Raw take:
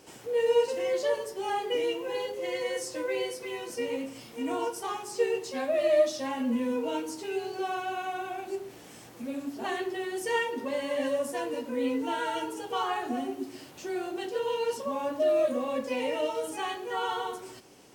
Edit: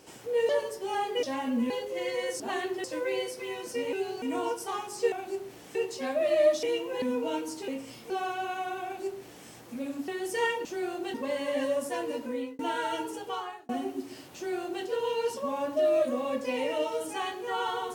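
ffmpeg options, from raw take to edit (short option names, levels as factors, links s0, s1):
-filter_complex "[0:a]asplit=19[s0][s1][s2][s3][s4][s5][s6][s7][s8][s9][s10][s11][s12][s13][s14][s15][s16][s17][s18];[s0]atrim=end=0.492[s19];[s1]atrim=start=1.038:end=1.782[s20];[s2]atrim=start=6.158:end=6.632[s21];[s3]atrim=start=2.168:end=2.872[s22];[s4]atrim=start=9.558:end=10.002[s23];[s5]atrim=start=2.868:end=3.962[s24];[s6]atrim=start=7.288:end=7.582[s25];[s7]atrim=start=4.378:end=5.282[s26];[s8]atrim=start=8.318:end=8.952[s27];[s9]atrim=start=5.278:end=6.162[s28];[s10]atrim=start=1.778:end=2.172[s29];[s11]atrim=start=6.628:end=7.292[s30];[s12]atrim=start=3.958:end=4.382[s31];[s13]atrim=start=7.578:end=9.562[s32];[s14]atrim=start=9.998:end=10.572[s33];[s15]atrim=start=13.778:end=14.272[s34];[s16]atrim=start=10.568:end=12.02,asetpts=PTS-STARTPTS,afade=t=out:st=1.112:d=0.34[s35];[s17]atrim=start=12.02:end=13.12,asetpts=PTS-STARTPTS,afade=t=in:d=0.004:c=hsin,afade=t=out:st=0.54:d=0.56[s36];[s18]atrim=start=13.12,asetpts=PTS-STARTPTS,afade=t=in:d=0.004:c=hsin[s37];[s19][s20]acrossfade=d=0.004:c1=hsin:c2=hsin[s38];[s38][s21]acrossfade=d=0.004:c1=hsin:c2=hsin[s39];[s39][s22]acrossfade=d=0.004:c1=hsin:c2=hsin[s40];[s40][s23]acrossfade=d=0.004:c1=hsin:c2=hsin[s41];[s41][s24]acrossfade=d=0.004:c1=hsin:c2=hsin[s42];[s42][s25]acrossfade=d=0.004:c1=hsin:c2=hsin[s43];[s43][s26]acrossfade=d=0.004:c1=hsin:c2=hsin[s44];[s44][s27]acrossfade=d=0.004:c1=hsin:c2=hsin[s45];[s45][s28]acrossfade=d=0.004:c1=hsin:c2=hsin[s46];[s46][s29]acrossfade=d=0.004:c1=hsin:c2=hsin[s47];[s47][s30]acrossfade=d=0.004:c1=hsin:c2=hsin[s48];[s48][s31]acrossfade=d=0.004:c1=hsin:c2=hsin[s49];[s49][s32]acrossfade=d=0.004:c1=hsin:c2=hsin[s50];[s50][s33]acrossfade=d=0.004:c1=hsin:c2=hsin[s51];[s51][s34]acrossfade=d=0.004:c1=hsin:c2=hsin[s52];[s35][s36][s37]concat=n=3:v=0:a=1[s53];[s52][s53]acrossfade=d=0.004:c1=hsin:c2=hsin"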